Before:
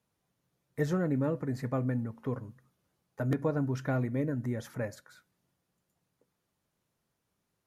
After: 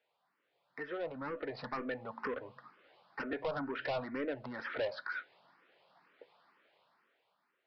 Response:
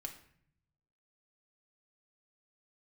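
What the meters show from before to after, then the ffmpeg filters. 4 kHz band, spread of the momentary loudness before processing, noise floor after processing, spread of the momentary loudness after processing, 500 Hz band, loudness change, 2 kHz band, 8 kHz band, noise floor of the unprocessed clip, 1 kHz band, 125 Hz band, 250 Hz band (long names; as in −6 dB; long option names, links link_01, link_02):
+5.5 dB, 9 LU, −81 dBFS, 11 LU, −3.5 dB, −7.0 dB, +3.5 dB, can't be measured, −82 dBFS, +1.0 dB, −21.5 dB, −11.0 dB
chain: -filter_complex "[0:a]acompressor=threshold=-46dB:ratio=2.5,highpass=630,lowpass=3000,dynaudnorm=framelen=320:gausssize=7:maxgain=14dB,aresample=11025,asoftclip=type=tanh:threshold=-38.5dB,aresample=44100,asplit=2[link_01][link_02];[link_02]afreqshift=2.1[link_03];[link_01][link_03]amix=inputs=2:normalize=1,volume=9dB"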